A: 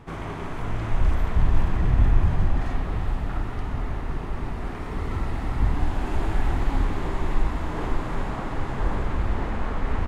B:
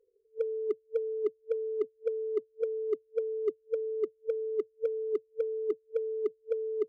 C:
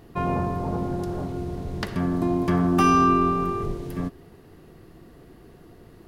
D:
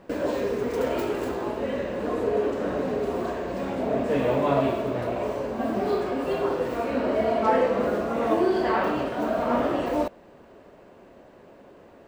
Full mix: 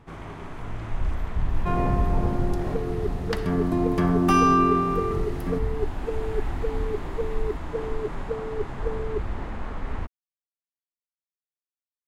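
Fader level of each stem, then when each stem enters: -5.5 dB, +0.5 dB, -0.5 dB, mute; 0.00 s, 2.35 s, 1.50 s, mute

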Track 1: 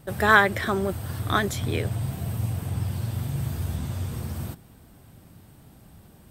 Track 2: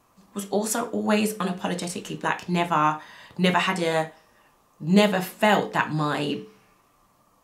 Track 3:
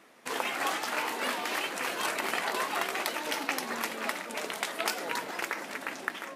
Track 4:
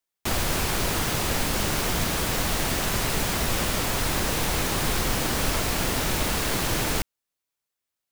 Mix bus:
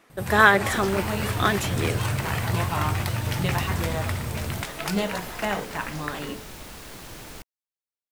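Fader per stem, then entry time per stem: +1.0 dB, -8.5 dB, -1.0 dB, -15.5 dB; 0.10 s, 0.00 s, 0.00 s, 0.40 s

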